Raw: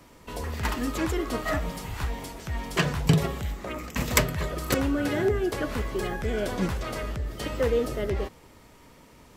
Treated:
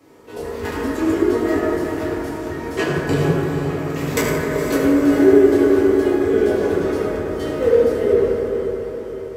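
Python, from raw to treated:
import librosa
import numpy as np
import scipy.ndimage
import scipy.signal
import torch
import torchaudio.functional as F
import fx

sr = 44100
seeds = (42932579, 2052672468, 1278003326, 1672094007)

p1 = fx.highpass(x, sr, hz=160.0, slope=6)
p2 = fx.peak_eq(p1, sr, hz=390.0, db=14.0, octaves=0.67)
p3 = p2 + fx.echo_diffused(p2, sr, ms=461, feedback_pct=59, wet_db=-9.5, dry=0)
p4 = fx.rev_fdn(p3, sr, rt60_s=3.3, lf_ratio=1.0, hf_ratio=0.3, size_ms=63.0, drr_db=-10.0)
y = p4 * librosa.db_to_amplitude(-7.0)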